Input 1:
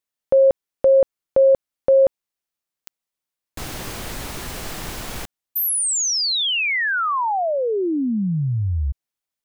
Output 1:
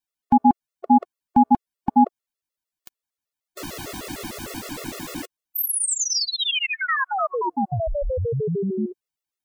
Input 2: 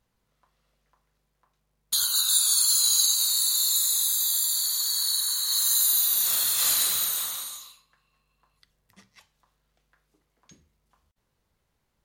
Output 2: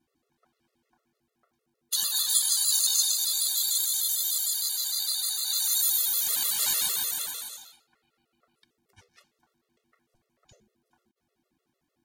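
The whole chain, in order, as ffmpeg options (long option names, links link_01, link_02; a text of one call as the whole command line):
ffmpeg -i in.wav -af "aeval=exprs='val(0)*sin(2*PI*290*n/s)':channel_layout=same,afftfilt=real='re*gt(sin(2*PI*6.6*pts/sr)*(1-2*mod(floor(b*sr/1024/360),2)),0)':imag='im*gt(sin(2*PI*6.6*pts/sr)*(1-2*mod(floor(b*sr/1024/360),2)),0)':win_size=1024:overlap=0.75,volume=3.5dB" out.wav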